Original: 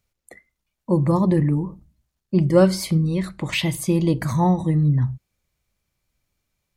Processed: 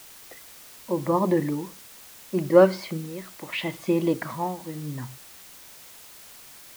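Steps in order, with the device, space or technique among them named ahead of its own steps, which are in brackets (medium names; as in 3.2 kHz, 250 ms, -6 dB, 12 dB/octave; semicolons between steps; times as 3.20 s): shortwave radio (band-pass 330–2600 Hz; tremolo 0.76 Hz, depth 70%; white noise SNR 20 dB); trim +2 dB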